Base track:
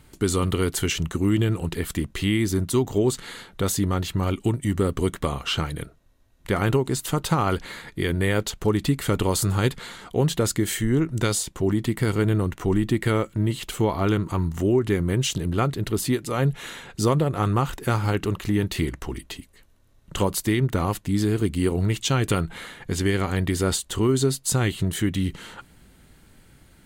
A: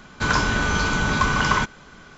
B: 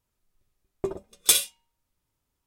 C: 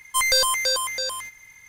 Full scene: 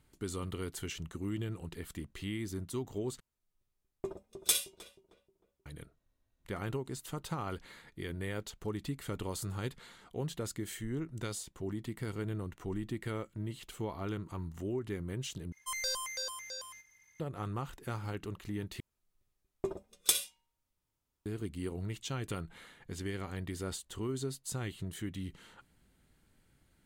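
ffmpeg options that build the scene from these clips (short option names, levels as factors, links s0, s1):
-filter_complex "[2:a]asplit=2[s0][s1];[0:a]volume=0.158[s2];[s0]asplit=2[s3][s4];[s4]adelay=311,lowpass=f=850:p=1,volume=0.335,asplit=2[s5][s6];[s6]adelay=311,lowpass=f=850:p=1,volume=0.44,asplit=2[s7][s8];[s8]adelay=311,lowpass=f=850:p=1,volume=0.44,asplit=2[s9][s10];[s10]adelay=311,lowpass=f=850:p=1,volume=0.44,asplit=2[s11][s12];[s12]adelay=311,lowpass=f=850:p=1,volume=0.44[s13];[s3][s5][s7][s9][s11][s13]amix=inputs=6:normalize=0[s14];[3:a]equalizer=f=5800:t=o:w=0.25:g=10[s15];[s1]acompressor=threshold=0.0708:ratio=3:attack=45:release=675:knee=1:detection=peak[s16];[s2]asplit=4[s17][s18][s19][s20];[s17]atrim=end=3.204[s21];[s14]atrim=end=2.46,asetpts=PTS-STARTPTS,volume=0.335[s22];[s18]atrim=start=5.656:end=15.524[s23];[s15]atrim=end=1.68,asetpts=PTS-STARTPTS,volume=0.133[s24];[s19]atrim=start=17.196:end=18.804[s25];[s16]atrim=end=2.46,asetpts=PTS-STARTPTS,volume=0.501[s26];[s20]atrim=start=21.256[s27];[s21][s22]acrossfade=d=0.004:c1=hsin:c2=hsin[s28];[s28][s23]acrossfade=d=0.004:c1=hsin:c2=hsin[s29];[s29][s24]acrossfade=d=0.004:c1=hsin:c2=hsin[s30];[s30][s25]acrossfade=d=0.004:c1=hsin:c2=hsin[s31];[s31][s26]acrossfade=d=0.004:c1=hsin:c2=hsin[s32];[s32][s27]acrossfade=d=0.004:c1=hsin:c2=hsin"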